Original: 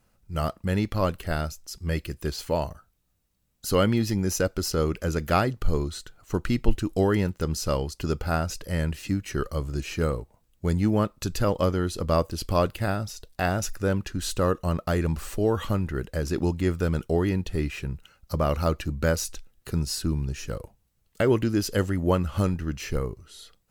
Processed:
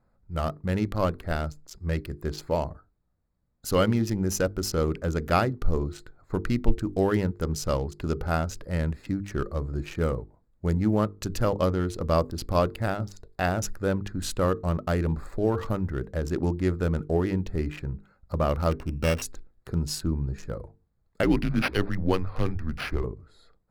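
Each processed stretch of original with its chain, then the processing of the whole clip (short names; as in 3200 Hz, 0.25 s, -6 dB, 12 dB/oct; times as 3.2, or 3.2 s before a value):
18.71–19.22 sample sorter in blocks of 16 samples + high shelf 3900 Hz -10 dB
21.23–23.04 resonant high shelf 1800 Hz +7 dB, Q 1.5 + frequency shift -84 Hz + decimation joined by straight lines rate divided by 6×
whole clip: Wiener smoothing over 15 samples; notches 50/100/150/200/250/300/350/400/450 Hz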